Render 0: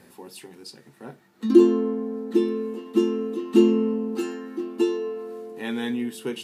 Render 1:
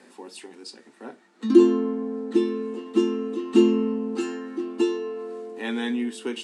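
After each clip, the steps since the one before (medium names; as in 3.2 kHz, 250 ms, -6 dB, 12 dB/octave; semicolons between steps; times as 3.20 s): elliptic band-pass 240–8700 Hz, stop band 40 dB; dynamic bell 520 Hz, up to -4 dB, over -33 dBFS, Q 1.5; trim +2 dB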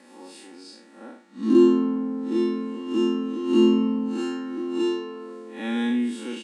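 spectral blur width 133 ms; comb 3.6 ms, depth 74%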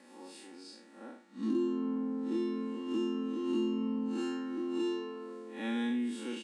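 compression 4:1, threshold -24 dBFS, peak gain reduction 11 dB; trim -6 dB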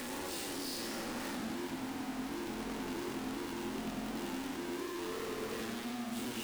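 one-bit comparator; modulated delay 95 ms, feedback 68%, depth 151 cents, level -5 dB; trim -6.5 dB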